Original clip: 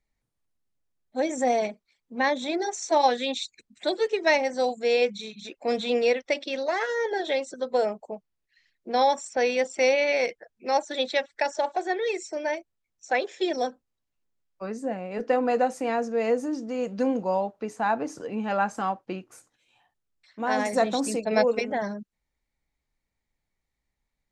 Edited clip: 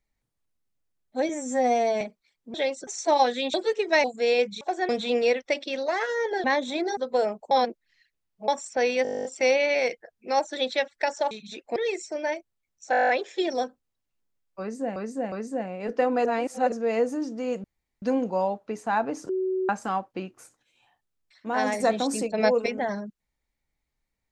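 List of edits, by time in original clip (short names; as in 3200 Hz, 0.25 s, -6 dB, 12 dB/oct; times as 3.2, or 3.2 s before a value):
1.29–1.65 stretch 2×
2.18–2.71 swap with 7.24–7.57
3.38–3.88 cut
4.38–4.67 cut
5.24–5.69 swap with 11.69–11.97
8.11–9.08 reverse
9.63 stutter 0.02 s, 12 plays
13.12 stutter 0.02 s, 10 plays
14.63–14.99 loop, 3 plays
15.56–16.03 reverse
16.95 insert room tone 0.38 s
18.22–18.62 bleep 375 Hz -23.5 dBFS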